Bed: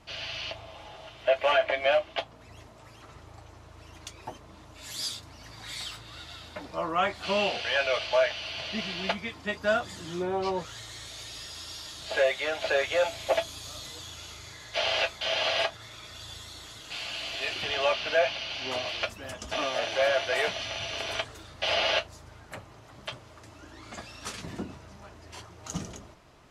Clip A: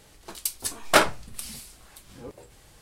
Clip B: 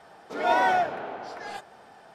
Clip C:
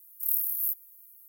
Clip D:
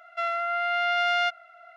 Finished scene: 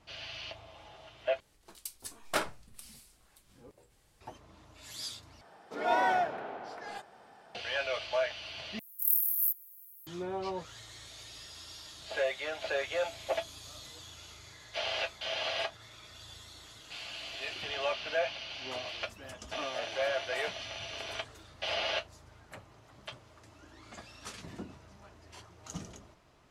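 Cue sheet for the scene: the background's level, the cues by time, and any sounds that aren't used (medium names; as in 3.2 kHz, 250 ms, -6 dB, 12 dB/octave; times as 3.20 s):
bed -7 dB
1.40 s: replace with A -13.5 dB
5.41 s: replace with B -5.5 dB
8.79 s: replace with C
not used: D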